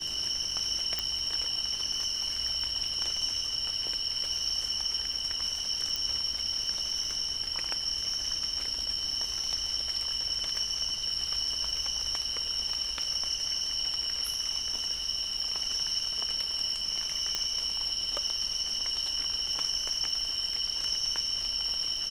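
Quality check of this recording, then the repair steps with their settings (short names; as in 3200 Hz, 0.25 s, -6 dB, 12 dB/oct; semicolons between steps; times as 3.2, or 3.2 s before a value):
crackle 41/s -38 dBFS
0.99 pop
5.96 pop
17.35 pop -14 dBFS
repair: de-click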